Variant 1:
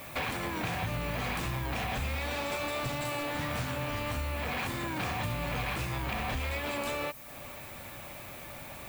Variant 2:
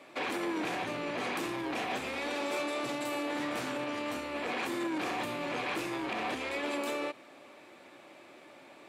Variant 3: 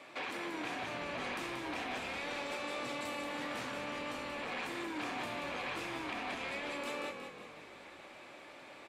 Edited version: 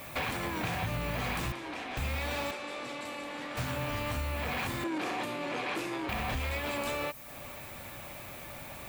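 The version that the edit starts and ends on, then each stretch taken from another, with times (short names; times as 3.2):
1
1.52–1.97 from 3
2.51–3.57 from 3
4.84–6.09 from 2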